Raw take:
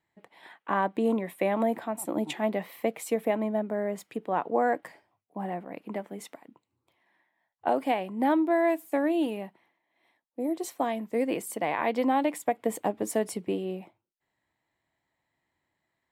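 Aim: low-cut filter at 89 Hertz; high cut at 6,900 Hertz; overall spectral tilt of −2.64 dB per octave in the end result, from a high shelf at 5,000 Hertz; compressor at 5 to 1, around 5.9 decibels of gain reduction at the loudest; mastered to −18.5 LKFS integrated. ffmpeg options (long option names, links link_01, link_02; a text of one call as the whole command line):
ffmpeg -i in.wav -af "highpass=89,lowpass=6900,highshelf=frequency=5000:gain=-6.5,acompressor=threshold=-27dB:ratio=5,volume=15.5dB" out.wav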